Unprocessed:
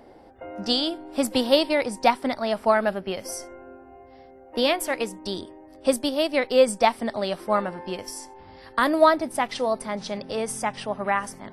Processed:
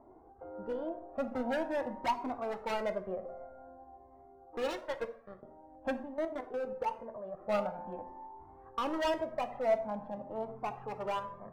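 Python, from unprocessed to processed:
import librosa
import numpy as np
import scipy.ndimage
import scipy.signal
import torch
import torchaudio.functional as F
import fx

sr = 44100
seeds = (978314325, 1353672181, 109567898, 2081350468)

y = scipy.signal.sosfilt(scipy.signal.butter(4, 1100.0, 'lowpass', fs=sr, output='sos'), x)
y = fx.low_shelf(y, sr, hz=410.0, db=-7.0)
y = fx.level_steps(y, sr, step_db=13, at=(6.0, 7.41))
y = np.clip(y, -10.0 ** (-24.0 / 20.0), 10.0 ** (-24.0 / 20.0))
y = fx.power_curve(y, sr, exponent=3.0, at=(4.57, 5.43))
y = fx.rev_plate(y, sr, seeds[0], rt60_s=0.76, hf_ratio=0.5, predelay_ms=0, drr_db=8.5)
y = fx.comb_cascade(y, sr, direction='rising', hz=0.48)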